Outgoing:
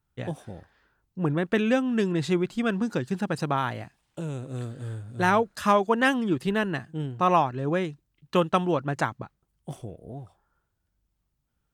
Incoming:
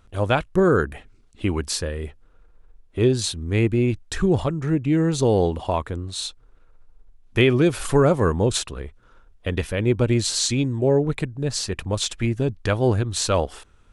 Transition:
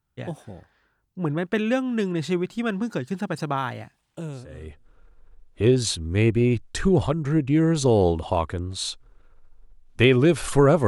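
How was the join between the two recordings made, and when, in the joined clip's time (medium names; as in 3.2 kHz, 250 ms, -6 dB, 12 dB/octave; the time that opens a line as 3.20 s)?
outgoing
4.58 s: go over to incoming from 1.95 s, crossfade 0.66 s quadratic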